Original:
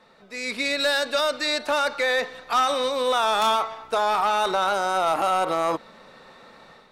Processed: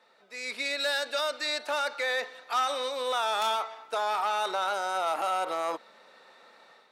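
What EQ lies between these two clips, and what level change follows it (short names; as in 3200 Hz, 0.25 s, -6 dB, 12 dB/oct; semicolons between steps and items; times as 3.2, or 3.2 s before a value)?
Bessel high-pass 480 Hz, order 2; notch 1100 Hz, Q 17; -5.5 dB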